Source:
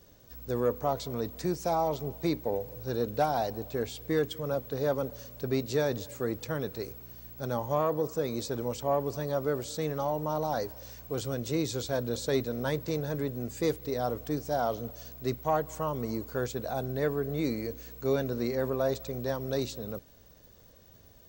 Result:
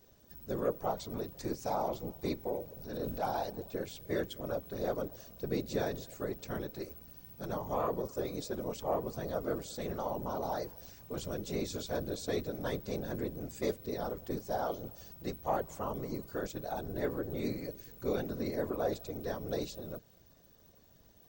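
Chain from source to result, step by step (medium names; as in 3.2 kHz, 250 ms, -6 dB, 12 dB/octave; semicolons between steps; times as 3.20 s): whisper effect; 2.82–3.25 s: transient shaper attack -8 dB, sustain +6 dB; trim -5.5 dB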